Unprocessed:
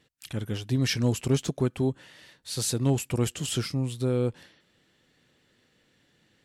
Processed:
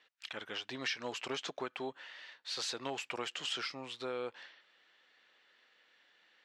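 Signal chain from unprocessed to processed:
high-pass filter 930 Hz 12 dB per octave
high-frequency loss of the air 190 metres
downward compressor 6 to 1, threshold −38 dBFS, peak gain reduction 8.5 dB
level +4.5 dB

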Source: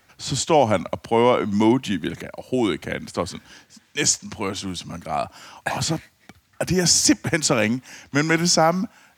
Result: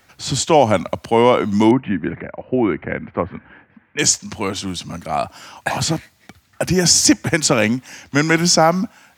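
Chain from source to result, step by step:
0:01.71–0:03.99: Butterworth low-pass 2,300 Hz 36 dB per octave
level +4 dB

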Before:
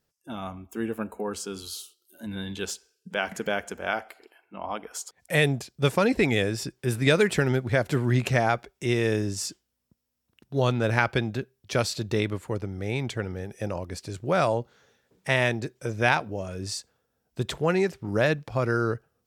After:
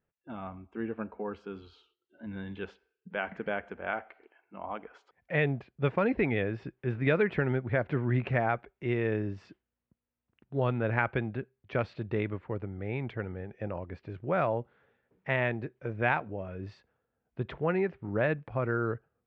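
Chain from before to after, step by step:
low-pass filter 2,500 Hz 24 dB per octave
level −5 dB

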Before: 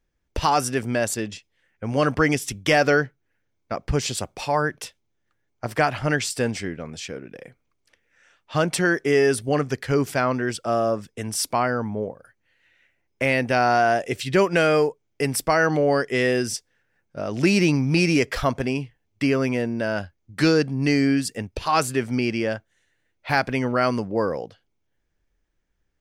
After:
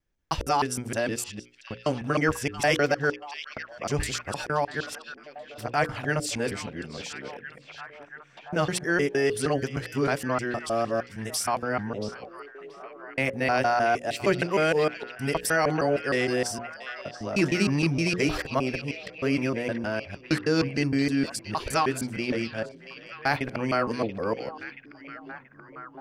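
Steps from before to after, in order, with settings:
reversed piece by piece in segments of 155 ms
mains-hum notches 60/120/180/240/300/360/420/480/540 Hz
echo through a band-pass that steps 680 ms, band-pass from 3,400 Hz, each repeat −0.7 octaves, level −7 dB
level −4 dB

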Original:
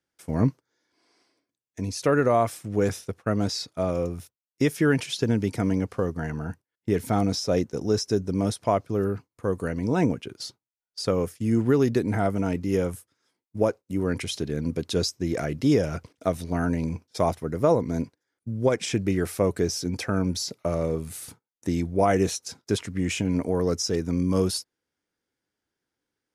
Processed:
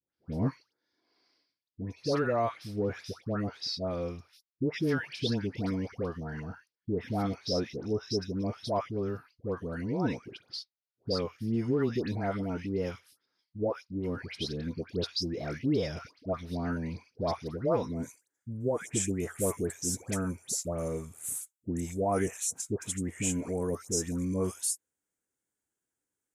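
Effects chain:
high shelf with overshoot 6,000 Hz −8 dB, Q 3, from 0:17.82 +8 dB
all-pass dispersion highs, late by 138 ms, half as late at 1,200 Hz
level −7.5 dB

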